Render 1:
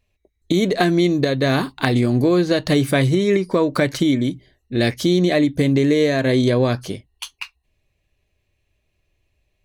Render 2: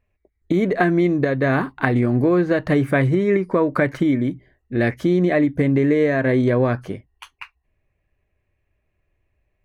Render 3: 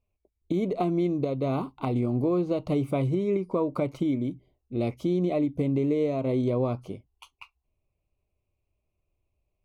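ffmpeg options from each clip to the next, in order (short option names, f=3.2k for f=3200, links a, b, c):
-af "highshelf=f=2.7k:t=q:w=1.5:g=-13.5,volume=-1dB"
-af "asuperstop=centerf=1700:order=4:qfactor=1.4,volume=-8dB"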